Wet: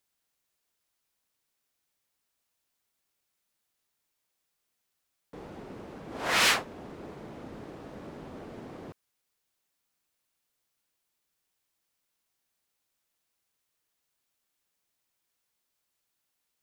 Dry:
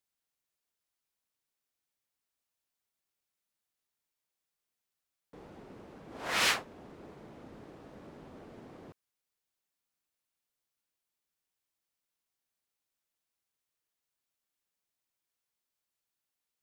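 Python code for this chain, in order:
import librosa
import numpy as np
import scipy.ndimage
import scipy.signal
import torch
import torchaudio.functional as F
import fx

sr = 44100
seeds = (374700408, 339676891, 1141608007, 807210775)

y = 10.0 ** (-23.5 / 20.0) * np.tanh(x / 10.0 ** (-23.5 / 20.0))
y = y * librosa.db_to_amplitude(7.0)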